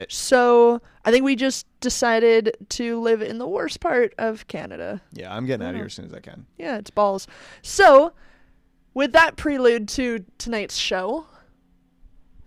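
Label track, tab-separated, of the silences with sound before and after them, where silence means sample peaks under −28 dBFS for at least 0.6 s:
8.080000	8.960000	silence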